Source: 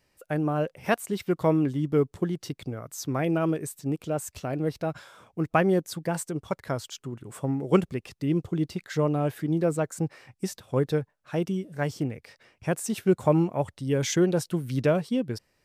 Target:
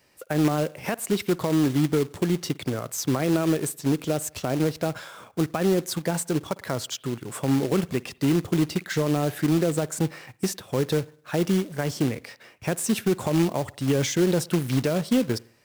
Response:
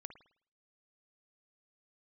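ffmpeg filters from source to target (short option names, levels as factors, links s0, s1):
-filter_complex "[0:a]highpass=f=150:p=1,alimiter=limit=0.0891:level=0:latency=1:release=81,asplit=2[s0][s1];[1:a]atrim=start_sample=2205[s2];[s1][s2]afir=irnorm=-1:irlink=0,volume=0.531[s3];[s0][s3]amix=inputs=2:normalize=0,acrossover=split=400[s4][s5];[s5]acompressor=threshold=0.0251:ratio=6[s6];[s4][s6]amix=inputs=2:normalize=0,acrusher=bits=3:mode=log:mix=0:aa=0.000001,volume=2"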